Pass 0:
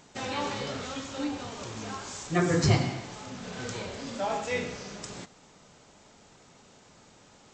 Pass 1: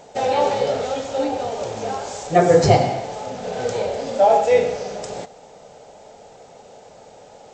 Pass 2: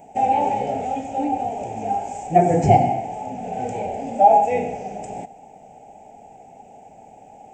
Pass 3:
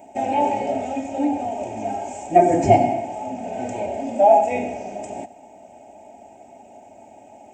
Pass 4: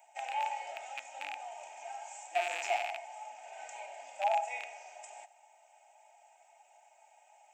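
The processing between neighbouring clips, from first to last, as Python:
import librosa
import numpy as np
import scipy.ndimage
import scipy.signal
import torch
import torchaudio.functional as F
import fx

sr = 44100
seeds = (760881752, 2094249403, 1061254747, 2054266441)

y1 = fx.band_shelf(x, sr, hz=600.0, db=13.5, octaves=1.2)
y1 = fx.notch(y1, sr, hz=1100.0, q=23.0)
y1 = y1 * 10.0 ** (4.5 / 20.0)
y2 = fx.curve_eq(y1, sr, hz=(140.0, 260.0, 530.0, 800.0, 1100.0, 2500.0, 4100.0, 10000.0), db=(0, 5, -9, 8, -21, -1, -24, 5))
y2 = y2 * 10.0 ** (-1.0 / 20.0)
y3 = scipy.signal.sosfilt(scipy.signal.butter(2, 82.0, 'highpass', fs=sr, output='sos'), y2)
y3 = y3 + 0.71 * np.pad(y3, (int(3.2 * sr / 1000.0), 0))[:len(y3)]
y4 = fx.rattle_buzz(y3, sr, strikes_db=-28.0, level_db=-18.0)
y4 = scipy.signal.sosfilt(scipy.signal.butter(4, 960.0, 'highpass', fs=sr, output='sos'), y4)
y4 = y4 * 10.0 ** (-7.5 / 20.0)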